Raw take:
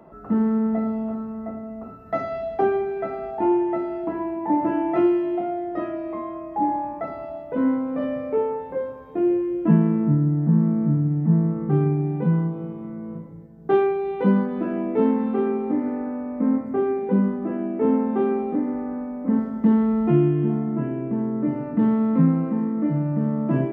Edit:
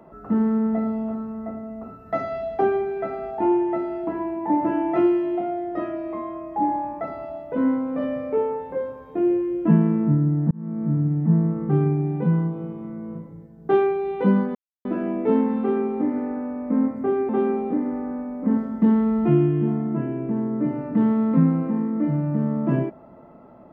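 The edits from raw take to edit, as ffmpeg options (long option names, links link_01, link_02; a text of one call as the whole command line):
ffmpeg -i in.wav -filter_complex "[0:a]asplit=4[link_01][link_02][link_03][link_04];[link_01]atrim=end=10.51,asetpts=PTS-STARTPTS,afade=type=out:start_time=10.506:duration=0.004:curve=hsin[link_05];[link_02]atrim=start=10.51:end=14.55,asetpts=PTS-STARTPTS,afade=type=in:duration=0.5,afade=type=out:start_time=4.036:duration=0.004:curve=hsin,apad=pad_dur=0.3[link_06];[link_03]atrim=start=14.55:end=16.992,asetpts=PTS-STARTPTS,afade=type=in:duration=0.004:curve=hsin[link_07];[link_04]atrim=start=18.108[link_08];[link_05][link_06][link_07]concat=n=3:v=0:a=1[link_09];[link_09][link_08]acrossfade=duration=0.004:curve1=hsin:curve2=hsin" out.wav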